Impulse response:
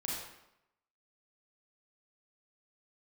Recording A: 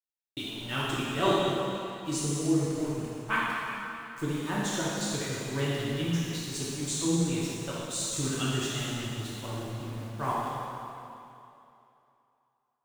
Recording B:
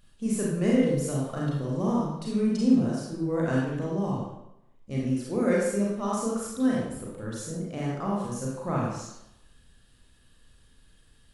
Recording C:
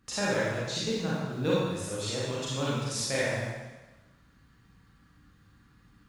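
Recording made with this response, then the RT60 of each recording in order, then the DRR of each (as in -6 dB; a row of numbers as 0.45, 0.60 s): B; 2.8, 0.85, 1.1 s; -8.0, -4.5, -8.0 dB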